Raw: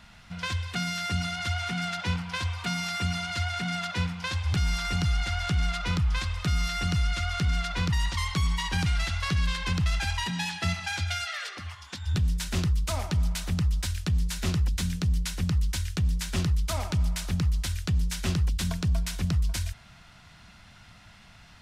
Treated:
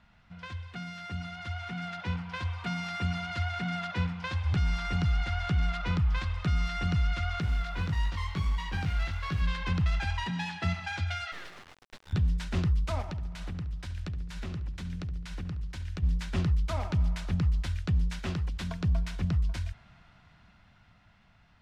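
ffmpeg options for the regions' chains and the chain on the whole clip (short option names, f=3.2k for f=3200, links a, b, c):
-filter_complex "[0:a]asettb=1/sr,asplit=3[a][b][c];[a]atrim=end=7.414[d];[b]atrim=start=7.41:end=9.42,asetpts=PTS-STARTPTS,afade=t=in:d=0.004:c=qsin,afade=t=out:st=2.006:d=0.004:c=qsin,acrusher=bits=4:mode=log:mix=0:aa=0.000001,flanger=delay=19:depth=2.3:speed=1.6[e];[c]atrim=start=9.416[f];[d][e]acrossfade=d=0.004:c1=hsin:c2=qsin[g];[g][f]acrossfade=d=0.004:c1=qsin:c2=hsin,asettb=1/sr,asplit=3[h][i][j];[h]atrim=end=11.324[k];[i]atrim=start=11.32:end=12.13,asetpts=PTS-STARTPTS,afade=t=in:d=0.004:c=qsin,afade=t=out:st=0.806:d=0.004:c=qsin,highpass=f=640:p=1,acrusher=bits=4:dc=4:mix=0:aa=0.000001[l];[j]atrim=start=12.126[m];[k][l]acrossfade=d=0.004:c1=hsin:c2=qsin[n];[n][m]acrossfade=d=0.004:c1=qsin:c2=hsin,asettb=1/sr,asplit=3[o][p][q];[o]atrim=end=13.014[r];[p]atrim=start=13.01:end=16.03,asetpts=PTS-STARTPTS,afade=t=in:d=0.004:c=qsin,afade=t=out:st=3.016:d=0.004:c=qsin,acompressor=threshold=-31dB:ratio=10:attack=3.2:release=140:knee=1:detection=peak,asplit=2[s][t];[t]adelay=70,lowpass=f=4.2k:p=1,volume=-13dB,asplit=2[u][v];[v]adelay=70,lowpass=f=4.2k:p=1,volume=0.54,asplit=2[w][x];[x]adelay=70,lowpass=f=4.2k:p=1,volume=0.54,asplit=2[y][z];[z]adelay=70,lowpass=f=4.2k:p=1,volume=0.54,asplit=2[aa][ab];[ab]adelay=70,lowpass=f=4.2k:p=1,volume=0.54,asplit=2[ac][ad];[ad]adelay=70,lowpass=f=4.2k:p=1,volume=0.54[ae];[s][u][w][y][aa][ac][ae]amix=inputs=7:normalize=0,atrim=end_sample=133182[af];[q]atrim=start=16.026[ag];[r][af]acrossfade=d=0.004:c1=hsin:c2=qsin[ah];[ah][ag]acrossfade=d=0.004:c1=qsin:c2=hsin,asettb=1/sr,asplit=3[ai][aj][ak];[ai]atrim=end=18.194[al];[aj]atrim=start=18.19:end=18.81,asetpts=PTS-STARTPTS,afade=t=in:d=0.004:c=qsin,afade=t=out:st=0.616:d=0.004:c=qsin,lowshelf=f=260:g=-6,acrusher=bits=8:mix=0:aa=0.5[am];[ak]atrim=start=18.806[an];[al][am]acrossfade=d=0.004:c1=hsin:c2=qsin[ao];[ao][an]acrossfade=d=0.004:c1=qsin:c2=hsin,highshelf=f=4.5k:g=-8,dynaudnorm=f=240:g=17:m=7.5dB,aemphasis=mode=reproduction:type=50kf,volume=-8.5dB"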